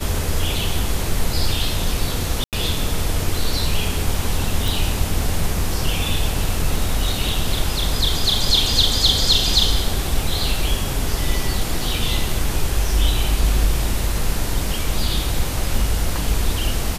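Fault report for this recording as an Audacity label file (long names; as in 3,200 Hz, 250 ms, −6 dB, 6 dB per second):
2.440000	2.530000	drop-out 88 ms
4.680000	4.680000	click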